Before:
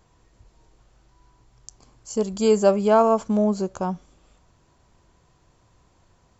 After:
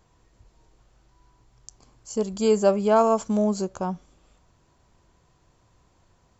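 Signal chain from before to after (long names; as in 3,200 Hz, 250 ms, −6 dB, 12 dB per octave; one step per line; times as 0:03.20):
0:02.96–0:03.65: high-shelf EQ 5,300 Hz +11.5 dB
level −2 dB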